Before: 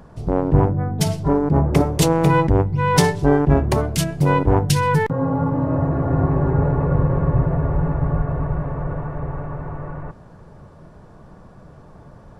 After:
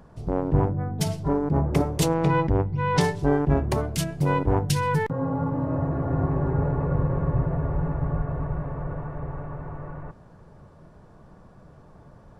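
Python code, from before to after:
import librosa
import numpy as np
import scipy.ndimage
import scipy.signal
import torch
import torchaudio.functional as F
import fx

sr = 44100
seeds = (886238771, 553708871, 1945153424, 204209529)

y = fx.lowpass(x, sr, hz=5100.0, slope=12, at=(2.14, 3.01))
y = y * librosa.db_to_amplitude(-6.0)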